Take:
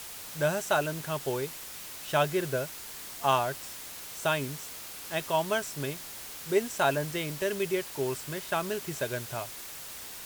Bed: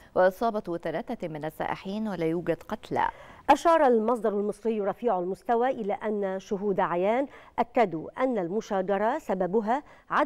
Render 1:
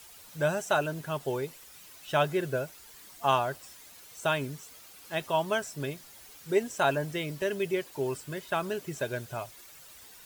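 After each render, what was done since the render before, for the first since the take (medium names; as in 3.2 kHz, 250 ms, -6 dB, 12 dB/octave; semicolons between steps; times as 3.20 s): noise reduction 11 dB, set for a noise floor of -43 dBFS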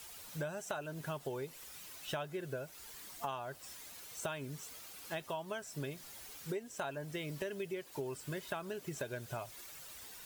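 compression 10:1, threshold -37 dBFS, peak gain reduction 17.5 dB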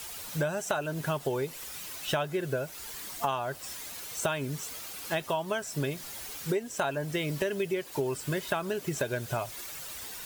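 trim +10 dB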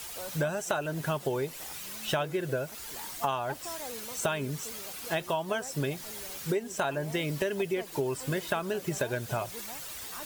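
add bed -21.5 dB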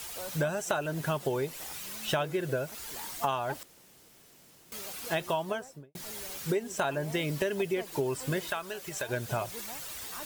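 3.63–4.72 s: room tone; 5.37–5.95 s: studio fade out; 8.50–9.09 s: peaking EQ 200 Hz -12.5 dB 3 oct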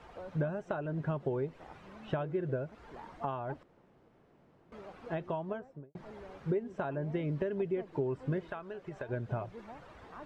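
low-pass 1.1 kHz 12 dB/octave; dynamic bell 820 Hz, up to -6 dB, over -45 dBFS, Q 0.72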